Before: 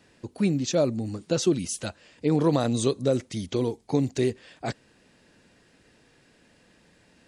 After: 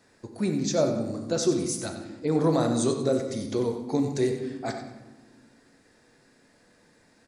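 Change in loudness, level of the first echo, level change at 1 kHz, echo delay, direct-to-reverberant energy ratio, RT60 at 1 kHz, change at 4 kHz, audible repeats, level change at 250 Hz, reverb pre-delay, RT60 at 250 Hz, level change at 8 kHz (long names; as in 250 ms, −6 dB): −0.5 dB, −11.0 dB, +1.0 dB, 94 ms, 3.5 dB, 1.1 s, −1.5 dB, 1, −0.5 dB, 5 ms, 2.2 s, +0.5 dB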